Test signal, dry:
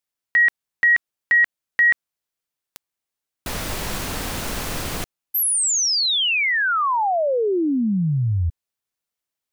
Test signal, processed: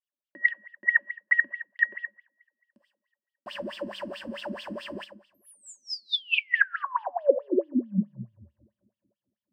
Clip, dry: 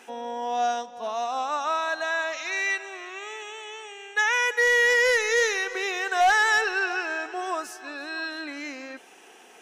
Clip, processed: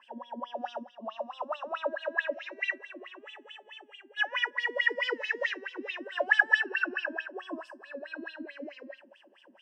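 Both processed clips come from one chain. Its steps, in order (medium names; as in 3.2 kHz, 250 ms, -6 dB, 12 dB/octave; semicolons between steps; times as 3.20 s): rippled EQ curve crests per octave 1.3, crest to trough 12 dB; two-slope reverb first 0.74 s, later 2.7 s, from -27 dB, DRR 7 dB; wah-wah 4.6 Hz 250–3600 Hz, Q 8.5; dynamic bell 2.2 kHz, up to +4 dB, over -39 dBFS, Q 0.85; small resonant body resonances 220/570 Hz, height 14 dB, ringing for 70 ms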